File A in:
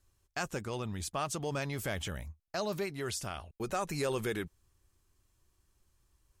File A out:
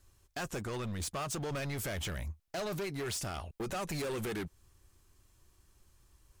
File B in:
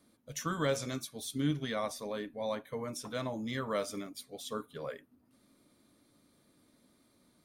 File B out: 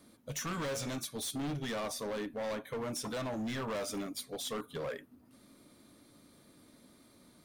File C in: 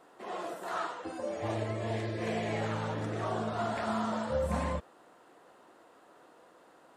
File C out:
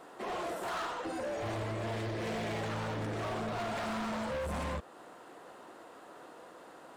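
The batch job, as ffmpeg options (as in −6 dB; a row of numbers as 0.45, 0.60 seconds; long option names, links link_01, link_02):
-filter_complex "[0:a]asplit=2[link_01][link_02];[link_02]acompressor=threshold=-41dB:ratio=6,volume=1.5dB[link_03];[link_01][link_03]amix=inputs=2:normalize=0,volume=34dB,asoftclip=hard,volume=-34dB"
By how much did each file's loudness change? −1.0, −1.0, −2.0 LU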